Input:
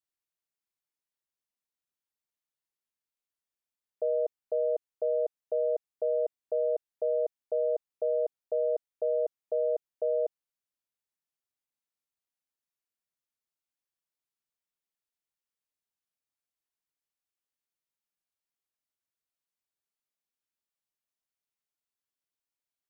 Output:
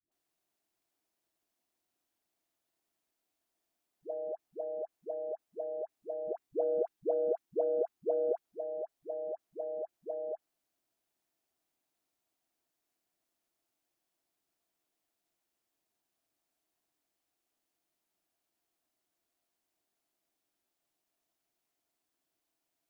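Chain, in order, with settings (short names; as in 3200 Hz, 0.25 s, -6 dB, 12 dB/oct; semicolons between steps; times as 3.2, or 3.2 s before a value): 6.25–8.39 bell 610 Hz -12 dB 0.29 oct; negative-ratio compressor -35 dBFS, ratio -0.5; small resonant body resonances 320/670 Hz, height 12 dB, ringing for 25 ms; AM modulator 170 Hz, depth 20%; dispersion highs, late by 0.118 s, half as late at 460 Hz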